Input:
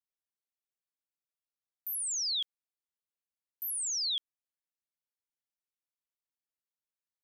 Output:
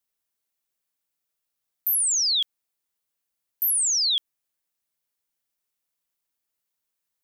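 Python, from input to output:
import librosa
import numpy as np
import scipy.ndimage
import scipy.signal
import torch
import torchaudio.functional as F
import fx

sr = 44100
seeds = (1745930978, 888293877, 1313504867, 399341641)

y = fx.high_shelf(x, sr, hz=9200.0, db=7.0)
y = y * 10.0 ** (8.5 / 20.0)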